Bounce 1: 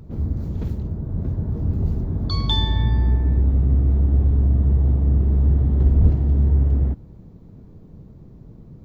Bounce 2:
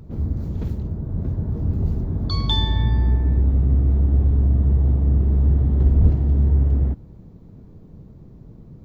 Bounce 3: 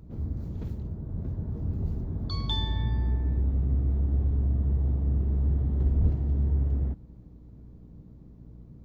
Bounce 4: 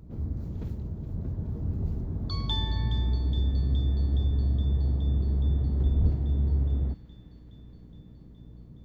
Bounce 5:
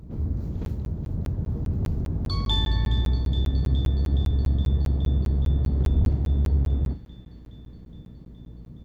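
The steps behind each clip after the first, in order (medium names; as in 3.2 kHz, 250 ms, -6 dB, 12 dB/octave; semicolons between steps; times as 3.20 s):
no audible change
hum 60 Hz, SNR 23 dB; trim -8.5 dB
feedback echo behind a high-pass 418 ms, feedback 76%, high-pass 2.1 kHz, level -9.5 dB
in parallel at -6 dB: one-sided clip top -30 dBFS; on the sum: doubling 38 ms -13 dB; crackling interface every 0.20 s, samples 512, zero; trim +1.5 dB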